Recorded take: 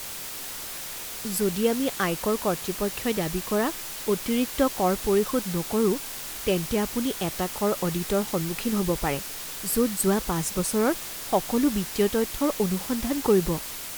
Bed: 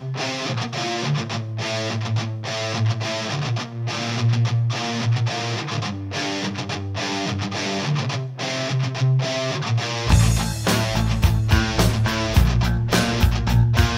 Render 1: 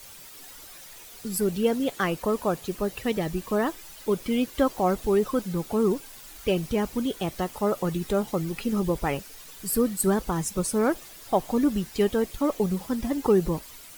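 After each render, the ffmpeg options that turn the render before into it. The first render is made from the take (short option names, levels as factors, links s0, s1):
-af "afftdn=nr=12:nf=-36"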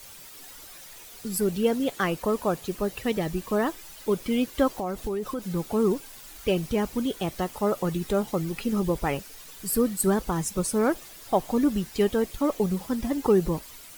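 -filter_complex "[0:a]asettb=1/sr,asplit=3[s0][s1][s2];[s0]atrim=end=4.704[s3];[s1]atrim=start=4.7:end=5.52,asetpts=PTS-STARTPTS,afade=t=in:d=0.004:c=qsin,afade=t=out:st=0.816:d=0.004:c=qsin,acompressor=threshold=0.0447:ratio=4:attack=3.2:release=140:knee=1:detection=peak[s4];[s2]atrim=start=5.516[s5];[s3][s4]acrossfade=d=0.004:c1=hsin:c2=qsin[s6];[s6][s5]acrossfade=d=0.004:c1=qsin:c2=hsin"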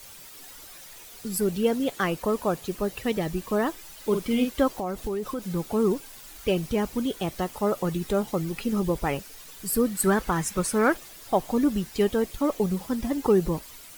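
-filter_complex "[0:a]asettb=1/sr,asplit=3[s0][s1][s2];[s0]atrim=end=3.994[s3];[s1]atrim=start=3.99:end=4.53,asetpts=PTS-STARTPTS,afade=t=in:d=0.004:c=qsin,afade=t=out:st=0.536:d=0.004:c=qsin,asplit=2[s4][s5];[s5]adelay=48,volume=0.501[s6];[s4][s6]amix=inputs=2:normalize=0,atrim=end_sample=23814[s7];[s2]atrim=start=4.526[s8];[s3][s7]acrossfade=d=0.004:c1=hsin:c2=qsin[s9];[s9][s8]acrossfade=d=0.004:c1=qsin:c2=hsin,asettb=1/sr,asplit=3[s10][s11][s12];[s10]atrim=end=5.064[s13];[s11]atrim=start=5.06:end=5.57,asetpts=PTS-STARTPTS,afade=t=in:d=0.004:c=qsin,afade=t=out:st=0.506:d=0.004:c=qsin,acrusher=bits=7:mix=0:aa=0.5[s14];[s12]atrim=start=5.566[s15];[s13][s14]acrossfade=d=0.004:c1=hsin:c2=qsin[s16];[s16][s15]acrossfade=d=0.004:c1=qsin:c2=hsin,asettb=1/sr,asplit=3[s17][s18][s19];[s17]atrim=end=9.954[s20];[s18]atrim=start=9.95:end=10.97,asetpts=PTS-STARTPTS,afade=t=in:d=0.004:c=qsin,afade=t=out:st=1.016:d=0.004:c=qsin,equalizer=f=1700:t=o:w=1.4:g=8.5[s21];[s19]atrim=start=10.966[s22];[s20][s21]acrossfade=d=0.004:c1=hsin:c2=qsin[s23];[s23][s22]acrossfade=d=0.004:c1=qsin:c2=hsin"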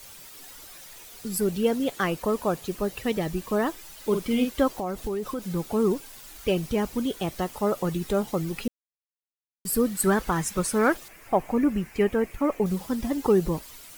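-filter_complex "[0:a]asettb=1/sr,asplit=3[s0][s1][s2];[s0]atrim=end=11.084[s3];[s1]atrim=start=11.08:end=12.66,asetpts=PTS-STARTPTS,afade=t=in:d=0.004:c=qsin,afade=t=out:st=1.576:d=0.004:c=qsin,highshelf=f=2900:t=q:w=3:g=-7[s4];[s2]atrim=start=12.656[s5];[s3][s4]acrossfade=d=0.004:c1=hsin:c2=qsin[s6];[s6][s5]acrossfade=d=0.004:c1=qsin:c2=hsin,asplit=3[s7][s8][s9];[s7]atrim=end=8.68,asetpts=PTS-STARTPTS,afade=t=out:st=8.676:d=0.004:c=hsin[s10];[s8]atrim=start=8.68:end=9.65,asetpts=PTS-STARTPTS,volume=0[s11];[s9]atrim=start=9.65,asetpts=PTS-STARTPTS,afade=t=in:d=0.004:c=hsin[s12];[s10][s11][s12]concat=n=3:v=0:a=1"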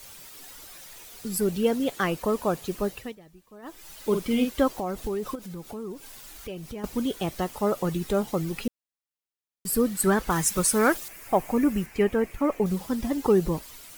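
-filter_complex "[0:a]asettb=1/sr,asplit=3[s0][s1][s2];[s0]atrim=end=5.354[s3];[s1]atrim=start=5.35:end=6.84,asetpts=PTS-STARTPTS,afade=t=in:d=0.004:c=qsin,afade=t=out:st=1.486:d=0.004:c=qsin,acompressor=threshold=0.0112:ratio=2.5:attack=3.2:release=140:knee=1:detection=peak[s4];[s2]atrim=start=6.836[s5];[s3][s4]acrossfade=d=0.004:c1=hsin:c2=qsin[s6];[s6][s5]acrossfade=d=0.004:c1=qsin:c2=hsin,asettb=1/sr,asplit=3[s7][s8][s9];[s7]atrim=end=10.304[s10];[s8]atrim=start=10.3:end=11.86,asetpts=PTS-STARTPTS,afade=t=in:d=0.004:c=qsin,afade=t=out:st=1.556:d=0.004:c=qsin,highshelf=f=4600:g=9[s11];[s9]atrim=start=11.856[s12];[s10][s11]acrossfade=d=0.004:c1=hsin:c2=qsin[s13];[s13][s12]acrossfade=d=0.004:c1=qsin:c2=hsin,asplit=3[s14][s15][s16];[s14]atrim=end=3.16,asetpts=PTS-STARTPTS,afade=t=out:st=2.87:d=0.29:silence=0.0707946[s17];[s15]atrim=start=3.16:end=3.62,asetpts=PTS-STARTPTS,volume=0.0708[s18];[s16]atrim=start=3.62,asetpts=PTS-STARTPTS,afade=t=in:d=0.29:silence=0.0707946[s19];[s17][s18][s19]concat=n=3:v=0:a=1"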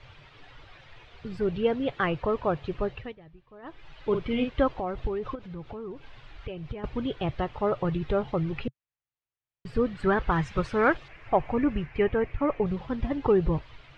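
-af "lowpass=f=3200:w=0.5412,lowpass=f=3200:w=1.3066,lowshelf=f=160:t=q:w=3:g=6.5"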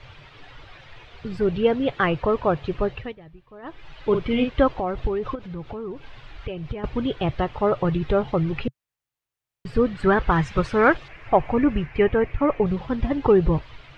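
-af "volume=1.88"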